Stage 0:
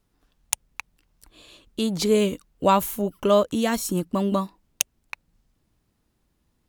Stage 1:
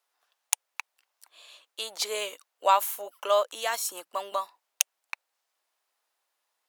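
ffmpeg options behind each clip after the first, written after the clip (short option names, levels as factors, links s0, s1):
-af "highpass=f=640:w=0.5412,highpass=f=640:w=1.3066,volume=0.891"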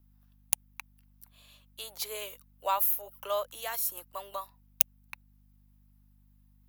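-filter_complex "[0:a]aeval=exprs='val(0)+0.00224*(sin(2*PI*50*n/s)+sin(2*PI*2*50*n/s)/2+sin(2*PI*3*50*n/s)/3+sin(2*PI*4*50*n/s)/4+sin(2*PI*5*50*n/s)/5)':c=same,acrossover=split=360|1400|4600[s0][s1][s2][s3];[s3]aexciter=amount=7.1:drive=3.2:freq=11000[s4];[s0][s1][s2][s4]amix=inputs=4:normalize=0,volume=0.398"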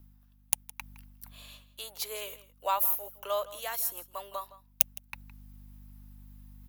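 -filter_complex "[0:a]areverse,acompressor=mode=upward:threshold=0.0112:ratio=2.5,areverse,asplit=2[s0][s1];[s1]adelay=163.3,volume=0.141,highshelf=f=4000:g=-3.67[s2];[s0][s2]amix=inputs=2:normalize=0"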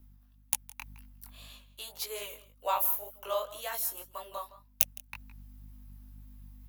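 -af "flanger=delay=16:depth=7.7:speed=1.9,volume=1.26"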